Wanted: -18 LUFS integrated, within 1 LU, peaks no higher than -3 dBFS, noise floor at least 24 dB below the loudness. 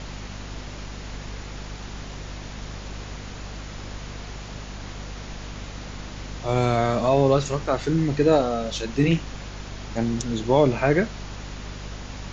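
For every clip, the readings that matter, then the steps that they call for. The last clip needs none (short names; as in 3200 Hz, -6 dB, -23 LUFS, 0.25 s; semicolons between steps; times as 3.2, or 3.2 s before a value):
hum 50 Hz; harmonics up to 250 Hz; hum level -35 dBFS; noise floor -37 dBFS; noise floor target -47 dBFS; loudness -22.5 LUFS; peak -6.0 dBFS; loudness target -18.0 LUFS
-> de-hum 50 Hz, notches 5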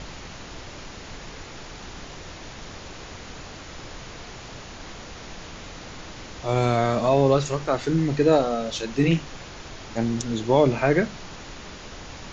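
hum none; noise floor -41 dBFS; noise floor target -47 dBFS
-> noise print and reduce 6 dB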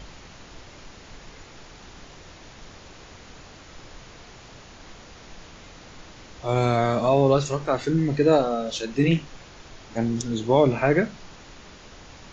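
noise floor -46 dBFS; noise floor target -47 dBFS
-> noise print and reduce 6 dB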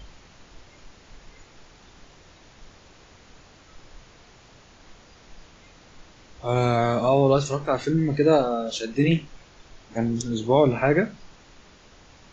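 noise floor -52 dBFS; loudness -22.5 LUFS; peak -6.0 dBFS; loudness target -18.0 LUFS
-> gain +4.5 dB; limiter -3 dBFS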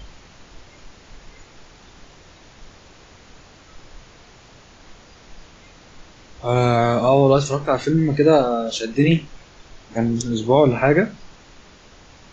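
loudness -18.5 LUFS; peak -3.0 dBFS; noise floor -48 dBFS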